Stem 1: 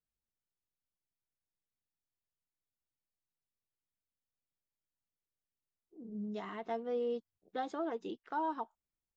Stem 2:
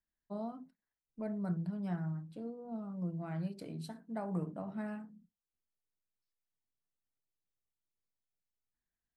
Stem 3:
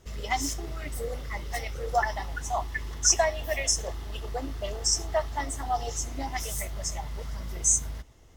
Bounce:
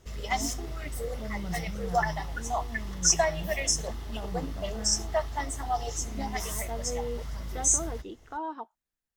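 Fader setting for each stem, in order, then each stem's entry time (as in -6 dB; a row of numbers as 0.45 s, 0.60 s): 0.0 dB, -1.5 dB, -1.0 dB; 0.00 s, 0.00 s, 0.00 s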